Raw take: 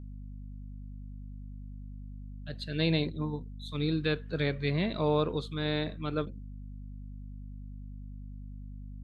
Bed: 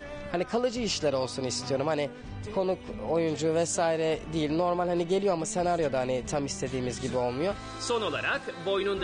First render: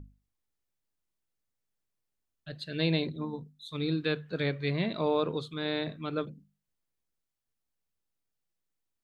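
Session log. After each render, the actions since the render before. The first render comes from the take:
mains-hum notches 50/100/150/200/250 Hz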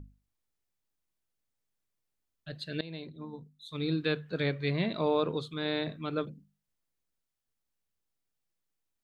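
0:02.81–0:03.98: fade in, from −20.5 dB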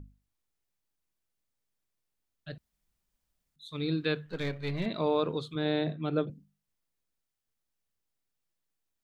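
0:02.58–0:03.56: fill with room tone
0:04.26–0:04.86: gain on one half-wave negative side −7 dB
0:05.55–0:06.30: loudspeaker in its box 100–4,000 Hz, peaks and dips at 150 Hz +7 dB, 330 Hz +5 dB, 490 Hz +3 dB, 710 Hz +6 dB, 1,100 Hz −4 dB, 2,200 Hz −4 dB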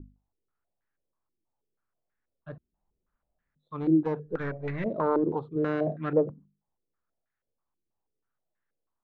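phase distortion by the signal itself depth 0.28 ms
low-pass on a step sequencer 6.2 Hz 340–1,700 Hz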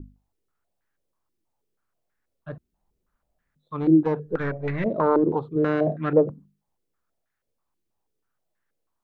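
level +5.5 dB

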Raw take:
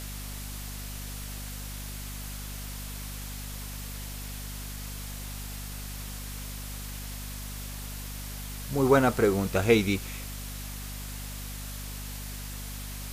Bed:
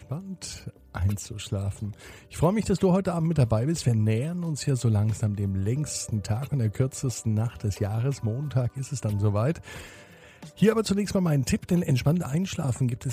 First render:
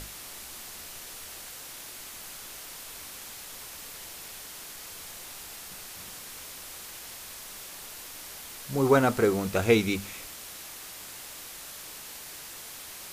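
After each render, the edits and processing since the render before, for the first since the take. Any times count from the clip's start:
mains-hum notches 50/100/150/200/250 Hz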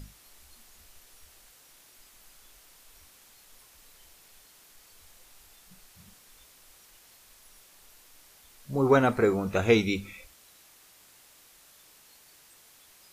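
noise reduction from a noise print 14 dB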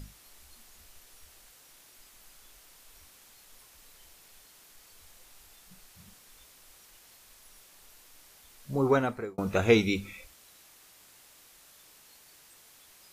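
0:08.71–0:09.38: fade out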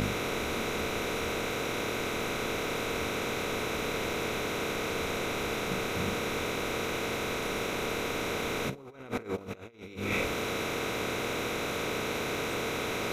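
compressor on every frequency bin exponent 0.4
compressor whose output falls as the input rises −31 dBFS, ratio −0.5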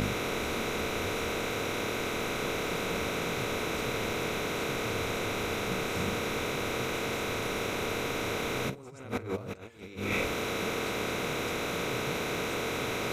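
mix in bed −20.5 dB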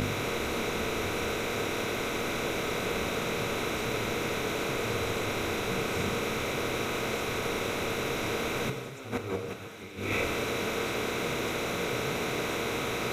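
feedback echo with a high-pass in the loop 1,130 ms, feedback 76%, level −17 dB
reverb whose tail is shaped and stops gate 240 ms flat, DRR 7 dB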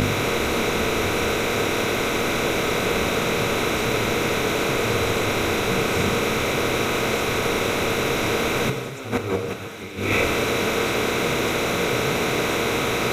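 level +9 dB

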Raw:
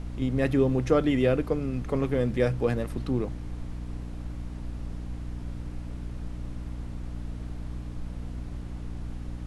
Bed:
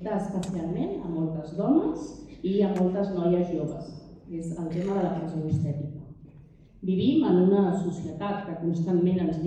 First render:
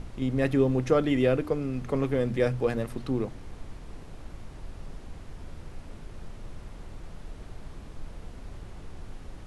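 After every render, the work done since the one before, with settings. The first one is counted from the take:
mains-hum notches 60/120/180/240/300 Hz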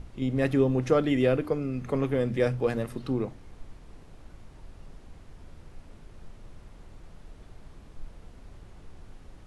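noise reduction from a noise print 6 dB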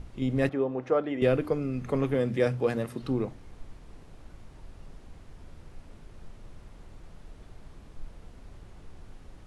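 0:00.49–0:01.22: resonant band-pass 780 Hz, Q 0.83
0:02.14–0:03.02: high-pass filter 90 Hz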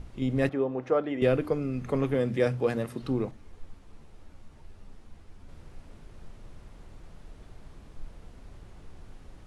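0:03.31–0:05.49: string-ensemble chorus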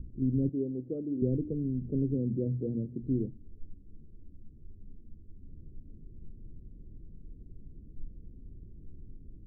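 inverse Chebyshev low-pass filter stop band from 900 Hz, stop band 50 dB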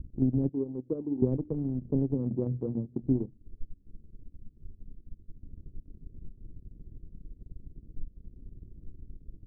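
transient designer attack +6 dB, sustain −10 dB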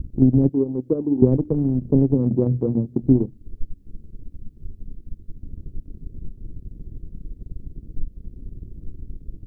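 level +11 dB

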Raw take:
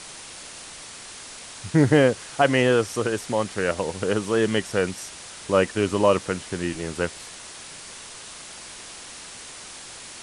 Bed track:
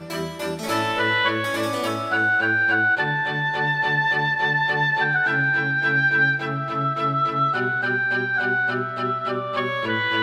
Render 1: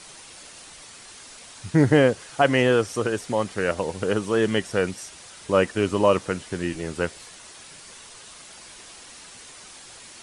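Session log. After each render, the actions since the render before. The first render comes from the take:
broadband denoise 6 dB, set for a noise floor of −41 dBFS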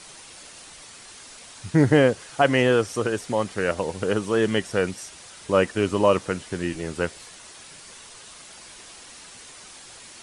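no processing that can be heard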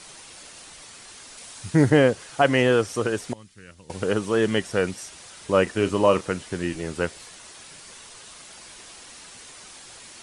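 0:01.37–0:01.90: high-shelf EQ 7,500 Hz +6.5 dB
0:03.33–0:03.90: guitar amp tone stack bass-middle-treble 6-0-2
0:05.63–0:06.21: double-tracking delay 36 ms −13.5 dB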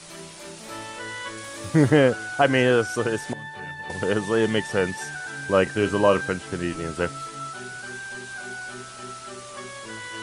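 mix in bed track −14 dB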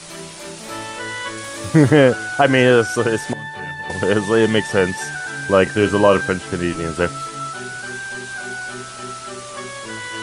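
level +6.5 dB
brickwall limiter −1 dBFS, peak gain reduction 3 dB

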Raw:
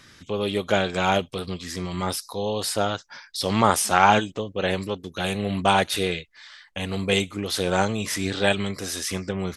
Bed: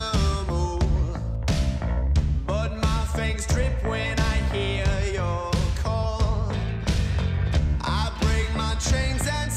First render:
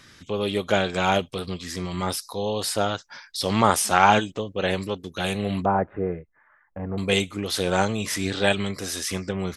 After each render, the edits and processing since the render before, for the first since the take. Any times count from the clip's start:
0:05.65–0:06.98: Bessel low-pass filter 940 Hz, order 8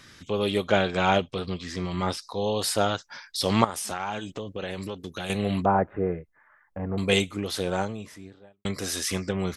0:00.67–0:02.42: high-frequency loss of the air 86 metres
0:03.64–0:05.30: downward compressor 5 to 1, threshold −29 dBFS
0:07.04–0:08.65: fade out and dull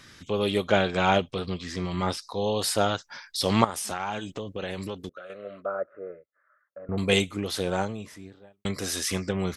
0:05.09–0:06.89: pair of resonant band-passes 870 Hz, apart 1.2 octaves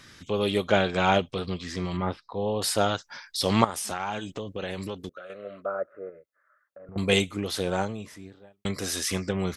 0:01.97–0:02.62: high-frequency loss of the air 460 metres
0:06.09–0:06.96: downward compressor, threshold −42 dBFS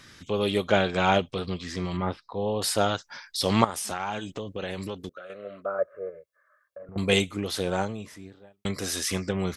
0:05.78–0:06.83: comb filter 1.8 ms, depth 82%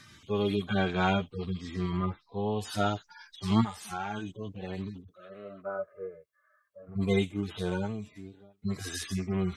harmonic-percussive split with one part muted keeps harmonic
parametric band 530 Hz −12.5 dB 0.21 octaves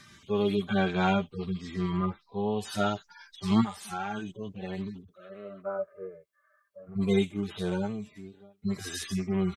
comb filter 5.1 ms, depth 36%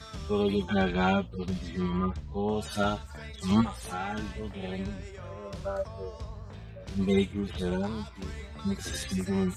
mix in bed −17.5 dB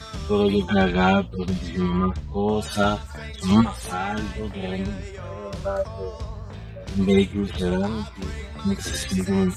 level +7 dB

